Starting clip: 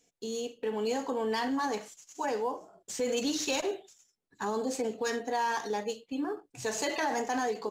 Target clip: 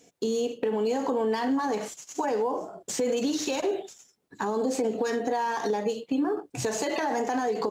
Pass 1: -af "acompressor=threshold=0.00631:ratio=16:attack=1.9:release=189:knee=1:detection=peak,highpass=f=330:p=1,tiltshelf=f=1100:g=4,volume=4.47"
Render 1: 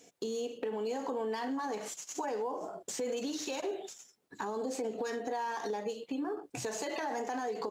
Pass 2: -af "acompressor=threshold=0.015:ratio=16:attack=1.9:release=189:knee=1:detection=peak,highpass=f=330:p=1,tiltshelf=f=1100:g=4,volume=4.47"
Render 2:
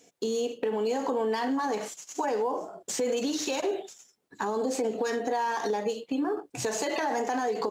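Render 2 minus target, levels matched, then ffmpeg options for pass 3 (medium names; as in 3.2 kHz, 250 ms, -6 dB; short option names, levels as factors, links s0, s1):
125 Hz band -3.0 dB
-af "acompressor=threshold=0.015:ratio=16:attack=1.9:release=189:knee=1:detection=peak,highpass=f=140:p=1,tiltshelf=f=1100:g=4,volume=4.47"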